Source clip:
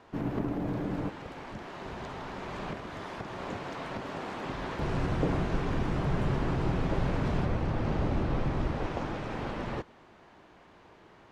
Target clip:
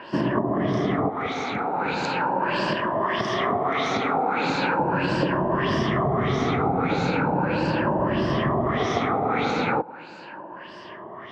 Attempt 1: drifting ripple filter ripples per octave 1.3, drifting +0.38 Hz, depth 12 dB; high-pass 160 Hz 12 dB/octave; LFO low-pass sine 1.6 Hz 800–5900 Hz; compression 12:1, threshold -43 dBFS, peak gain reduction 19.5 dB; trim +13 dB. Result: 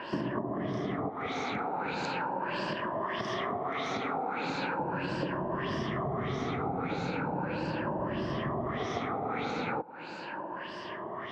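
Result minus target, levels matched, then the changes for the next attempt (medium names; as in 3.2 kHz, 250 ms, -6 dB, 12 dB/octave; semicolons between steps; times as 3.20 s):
compression: peak gain reduction +10 dB
change: compression 12:1, threshold -32 dBFS, peak gain reduction 9.5 dB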